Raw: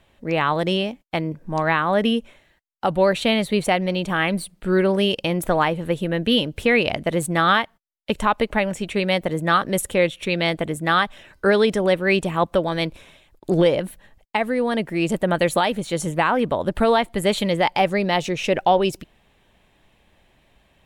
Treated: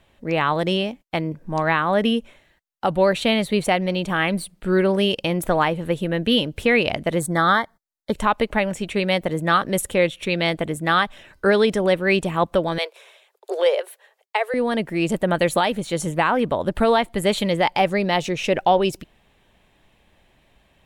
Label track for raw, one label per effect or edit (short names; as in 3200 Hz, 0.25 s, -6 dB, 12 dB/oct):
7.200000	8.130000	Butterworth band-stop 2700 Hz, Q 1.9
12.780000	14.540000	steep high-pass 390 Hz 96 dB/oct